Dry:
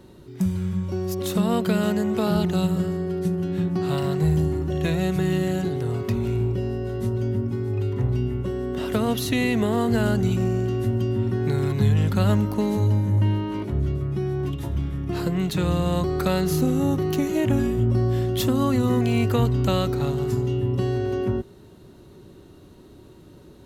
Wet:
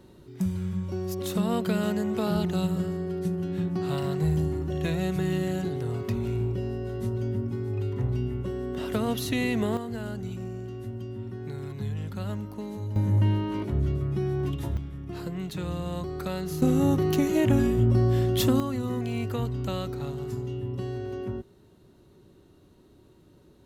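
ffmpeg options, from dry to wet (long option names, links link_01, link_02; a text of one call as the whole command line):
ffmpeg -i in.wav -af "asetnsamples=nb_out_samples=441:pad=0,asendcmd='9.77 volume volume -13dB;12.96 volume volume -2dB;14.77 volume volume -9.5dB;16.62 volume volume -0.5dB;18.6 volume volume -9dB',volume=-4.5dB" out.wav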